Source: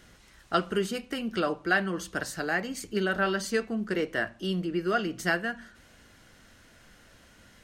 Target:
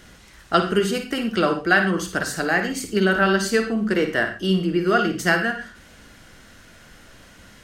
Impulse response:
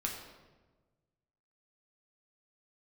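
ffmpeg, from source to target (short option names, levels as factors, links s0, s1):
-filter_complex "[0:a]asplit=2[s0][s1];[1:a]atrim=start_sample=2205,atrim=end_sample=3969,adelay=52[s2];[s1][s2]afir=irnorm=-1:irlink=0,volume=0.398[s3];[s0][s3]amix=inputs=2:normalize=0,volume=2.37"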